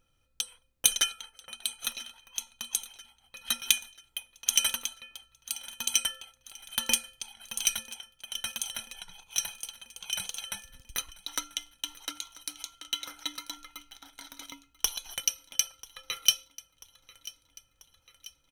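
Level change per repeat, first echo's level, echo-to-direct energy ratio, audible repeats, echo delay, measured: -4.5 dB, -20.0 dB, -18.0 dB, 4, 0.989 s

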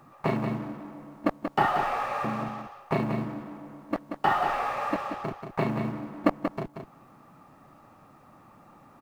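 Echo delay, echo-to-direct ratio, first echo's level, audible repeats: 0.183 s, -7.0 dB, -7.0 dB, 1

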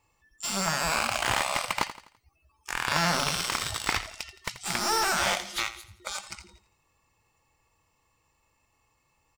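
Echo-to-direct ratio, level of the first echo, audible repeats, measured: -13.0 dB, -14.0 dB, 3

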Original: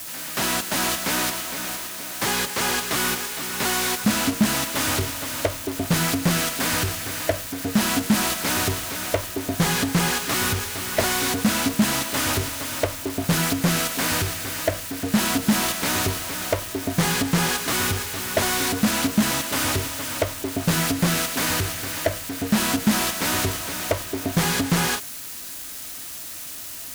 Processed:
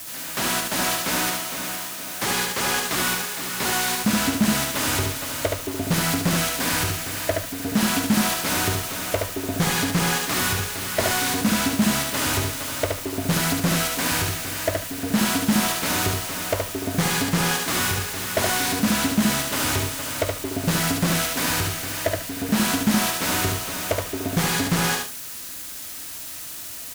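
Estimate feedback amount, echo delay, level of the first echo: 18%, 72 ms, -3.5 dB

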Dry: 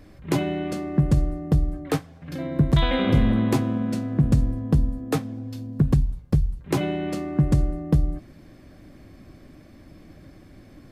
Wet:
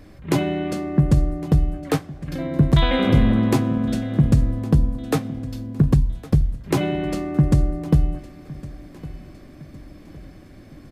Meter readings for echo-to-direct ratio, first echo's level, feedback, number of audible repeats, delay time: -18.0 dB, -19.0 dB, 43%, 3, 1.11 s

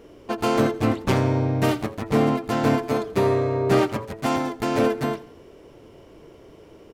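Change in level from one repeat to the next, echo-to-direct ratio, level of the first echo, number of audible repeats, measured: -7.0 dB, -18.0 dB, -19.0 dB, 3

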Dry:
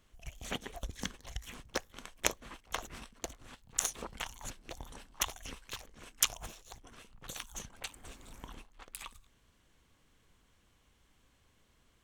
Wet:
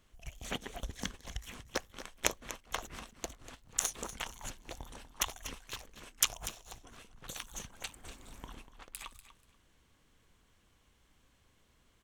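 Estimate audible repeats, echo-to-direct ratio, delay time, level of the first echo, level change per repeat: 2, -13.5 dB, 0.242 s, -13.5 dB, -14.5 dB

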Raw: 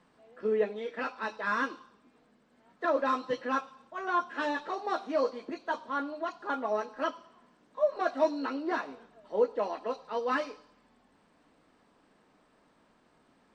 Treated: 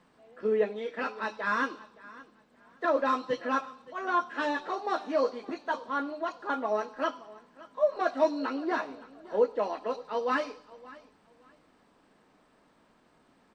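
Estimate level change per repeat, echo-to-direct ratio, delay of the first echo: -13.0 dB, -20.0 dB, 0.57 s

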